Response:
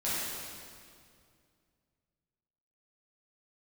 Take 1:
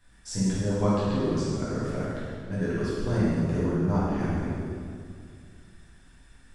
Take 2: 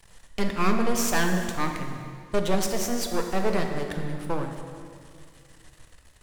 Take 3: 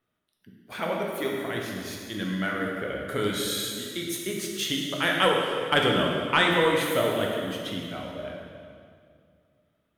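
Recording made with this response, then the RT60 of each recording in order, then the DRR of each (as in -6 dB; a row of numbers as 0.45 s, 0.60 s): 1; 2.2 s, 2.2 s, 2.2 s; -11.5 dB, 3.5 dB, -1.5 dB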